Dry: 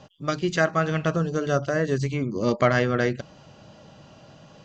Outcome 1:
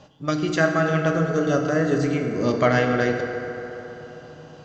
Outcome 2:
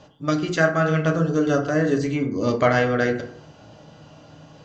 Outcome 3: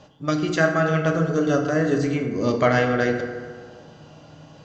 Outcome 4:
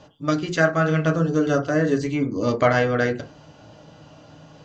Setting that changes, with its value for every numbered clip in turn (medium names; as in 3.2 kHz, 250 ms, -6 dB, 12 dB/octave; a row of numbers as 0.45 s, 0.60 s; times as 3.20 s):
FDN reverb, RT60: 4 s, 0.68 s, 1.8 s, 0.32 s